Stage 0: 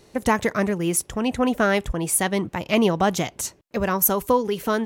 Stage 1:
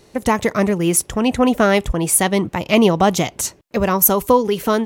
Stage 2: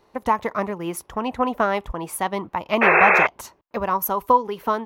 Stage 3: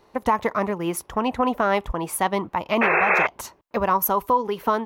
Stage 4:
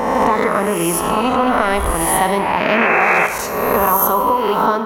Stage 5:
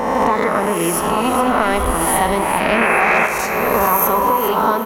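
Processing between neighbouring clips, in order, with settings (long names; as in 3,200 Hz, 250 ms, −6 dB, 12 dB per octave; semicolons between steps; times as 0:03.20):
dynamic equaliser 1,600 Hz, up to −6 dB, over −42 dBFS, Q 4.3; automatic gain control gain up to 3.5 dB; level +3 dB
transient designer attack +3 dB, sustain −1 dB; octave-band graphic EQ 125/1,000/8,000 Hz −5/+12/−11 dB; sound drawn into the spectrogram noise, 0:02.81–0:03.27, 350–2,700 Hz −4 dBFS; level −11.5 dB
boost into a limiter +11.5 dB; level −9 dB
peak hold with a rise ahead of every peak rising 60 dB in 1.21 s; downward compressor 2 to 1, threshold −21 dBFS, peak gain reduction 5.5 dB; convolution reverb RT60 1.3 s, pre-delay 27 ms, DRR 8 dB; level +6.5 dB
repeating echo 413 ms, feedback 44%, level −9 dB; level −1 dB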